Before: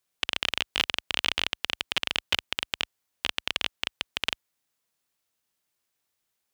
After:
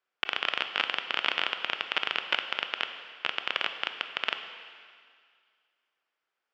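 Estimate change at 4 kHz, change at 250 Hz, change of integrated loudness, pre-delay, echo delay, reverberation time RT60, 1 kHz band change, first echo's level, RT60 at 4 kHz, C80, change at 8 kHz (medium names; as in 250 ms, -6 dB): -3.0 dB, -4.5 dB, -1.0 dB, 20 ms, no echo, 2.0 s, +4.0 dB, no echo, 2.1 s, 9.5 dB, under -15 dB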